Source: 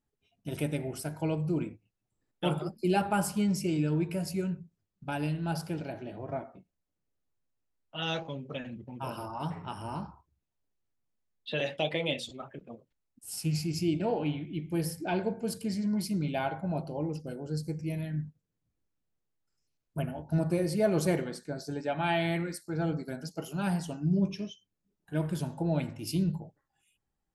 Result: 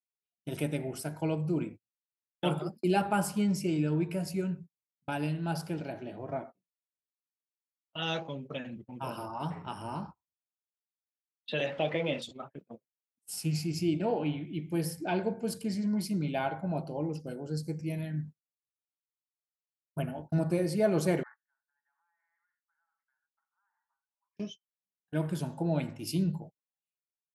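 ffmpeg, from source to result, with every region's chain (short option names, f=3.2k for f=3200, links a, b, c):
-filter_complex "[0:a]asettb=1/sr,asplit=3[a][b][c];[a]atrim=end=11.664[d];[b]atrim=start=11.66:end=12.22,asetpts=PTS-STARTPTS,afade=t=in:d=0.004:c=qsin,afade=t=out:st=0.556:d=0.004:c=qsin,aeval=exprs='val(0)+0.5*0.00944*sgn(val(0))':c=same,lowpass=2.5k[e];[c]atrim=start=12.216[f];[d][e]acrossfade=d=0.004:c1=hsin:c2=qsin[g];[g][f]acrossfade=d=0.004:c1=qsin:c2=hsin,asettb=1/sr,asplit=3[h][i][j];[h]atrim=end=21.234[k];[i]atrim=start=21.23:end=24.37,asetpts=PTS-STARTPTS,afade=t=in:d=0.004:c=qsin,afade=t=out:st=3.136:d=0.004:c=qsin,asuperpass=centerf=1300:order=12:qfactor=1.2,acompressor=threshold=-48dB:ratio=6:attack=3.2:release=140:knee=1:detection=peak[l];[j]atrim=start=24.366[m];[k][l]acrossfade=d=0.004:c1=hsin:c2=qsin[n];[n][m]acrossfade=d=0.004:c1=qsin:c2=hsin,highpass=110,agate=range=-30dB:threshold=-44dB:ratio=16:detection=peak,adynamicequalizer=threshold=0.00398:dfrequency=3200:dqfactor=0.7:tfrequency=3200:tqfactor=0.7:attack=5:release=100:ratio=0.375:range=1.5:mode=cutabove:tftype=highshelf"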